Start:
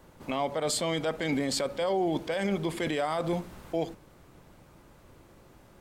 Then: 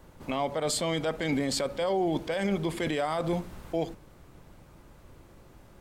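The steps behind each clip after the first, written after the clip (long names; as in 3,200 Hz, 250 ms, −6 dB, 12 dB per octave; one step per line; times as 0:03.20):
low-shelf EQ 88 Hz +7 dB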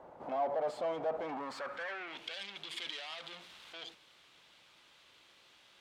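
in parallel at −1 dB: brickwall limiter −25.5 dBFS, peak gain reduction 8.5 dB
on the sum: soft clipping −31 dBFS, distortion −6 dB
band-pass filter sweep 710 Hz → 3,400 Hz, 0:01.22–0:02.36
level +4.5 dB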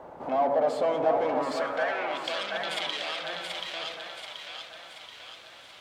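echo with a time of its own for lows and highs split 560 Hz, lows 129 ms, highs 731 ms, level −4 dB
convolution reverb RT60 2.7 s, pre-delay 6 ms, DRR 10 dB
level +8.5 dB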